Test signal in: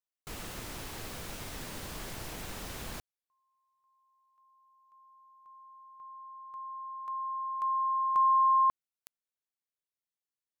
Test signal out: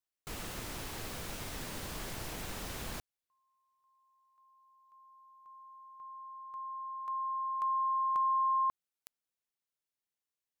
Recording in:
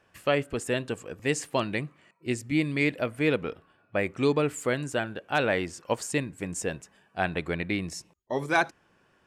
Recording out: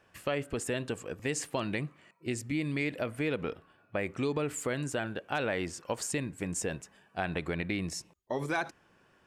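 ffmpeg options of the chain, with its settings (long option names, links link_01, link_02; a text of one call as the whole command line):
ffmpeg -i in.wav -af "acompressor=threshold=-30dB:ratio=3:attack=6.3:release=113:knee=1:detection=peak" out.wav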